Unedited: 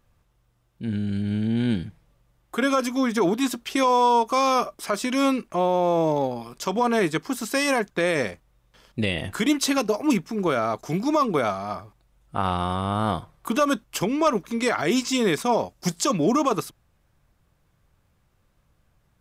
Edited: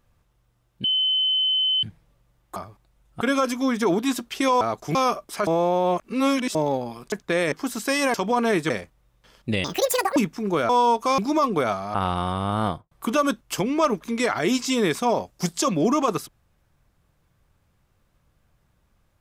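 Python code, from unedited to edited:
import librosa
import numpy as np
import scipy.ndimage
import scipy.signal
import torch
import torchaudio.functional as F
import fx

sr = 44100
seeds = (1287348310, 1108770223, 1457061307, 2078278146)

y = fx.studio_fade_out(x, sr, start_s=13.08, length_s=0.26)
y = fx.edit(y, sr, fx.bleep(start_s=0.84, length_s=0.99, hz=3050.0, db=-18.5),
    fx.swap(start_s=3.96, length_s=0.49, other_s=10.62, other_length_s=0.34),
    fx.reverse_span(start_s=4.97, length_s=1.08),
    fx.swap(start_s=6.62, length_s=0.56, other_s=7.8, other_length_s=0.4),
    fx.speed_span(start_s=9.14, length_s=0.95, speed=1.82),
    fx.move(start_s=11.72, length_s=0.65, to_s=2.56), tone=tone)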